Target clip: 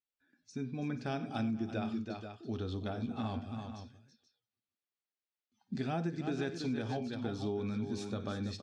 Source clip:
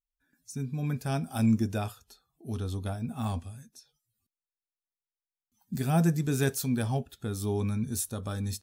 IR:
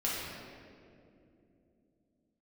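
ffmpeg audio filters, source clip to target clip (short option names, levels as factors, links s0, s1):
-af "highpass=130,equalizer=f=150:t=q:w=4:g=-9,equalizer=f=330:t=q:w=4:g=3,equalizer=f=1000:t=q:w=4:g=-5,lowpass=f=4700:w=0.5412,lowpass=f=4700:w=1.3066,aecho=1:1:54|95|330|482:0.168|0.106|0.335|0.224,acompressor=threshold=0.0251:ratio=6"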